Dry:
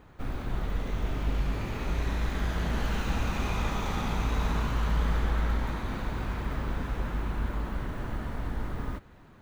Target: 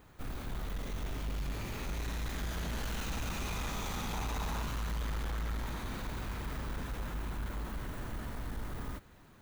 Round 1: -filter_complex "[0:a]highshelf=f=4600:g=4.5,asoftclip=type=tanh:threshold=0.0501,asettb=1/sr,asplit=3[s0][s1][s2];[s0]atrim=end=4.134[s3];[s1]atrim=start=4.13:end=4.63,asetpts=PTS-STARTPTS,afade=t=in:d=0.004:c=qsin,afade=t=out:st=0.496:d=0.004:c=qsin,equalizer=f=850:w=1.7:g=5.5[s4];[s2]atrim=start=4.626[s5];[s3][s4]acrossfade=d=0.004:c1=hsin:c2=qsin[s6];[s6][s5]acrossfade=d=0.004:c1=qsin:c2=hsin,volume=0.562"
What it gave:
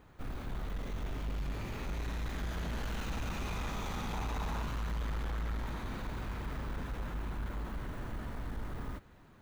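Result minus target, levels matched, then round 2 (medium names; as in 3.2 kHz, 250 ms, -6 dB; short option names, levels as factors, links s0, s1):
8 kHz band -6.0 dB
-filter_complex "[0:a]highshelf=f=4600:g=14,asoftclip=type=tanh:threshold=0.0501,asettb=1/sr,asplit=3[s0][s1][s2];[s0]atrim=end=4.134[s3];[s1]atrim=start=4.13:end=4.63,asetpts=PTS-STARTPTS,afade=t=in:d=0.004:c=qsin,afade=t=out:st=0.496:d=0.004:c=qsin,equalizer=f=850:w=1.7:g=5.5[s4];[s2]atrim=start=4.626[s5];[s3][s4]acrossfade=d=0.004:c1=hsin:c2=qsin[s6];[s6][s5]acrossfade=d=0.004:c1=qsin:c2=hsin,volume=0.562"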